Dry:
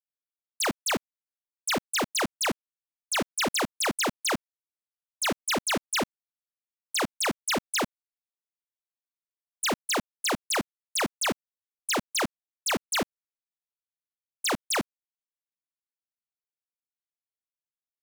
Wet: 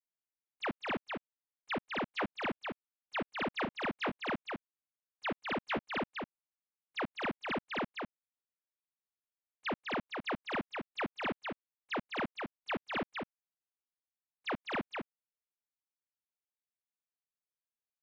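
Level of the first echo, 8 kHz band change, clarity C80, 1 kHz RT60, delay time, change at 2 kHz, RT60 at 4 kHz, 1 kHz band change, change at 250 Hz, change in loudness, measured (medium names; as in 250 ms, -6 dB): -4.5 dB, under -35 dB, no reverb, no reverb, 204 ms, -7.0 dB, no reverb, -6.5 dB, -6.5 dB, -10.0 dB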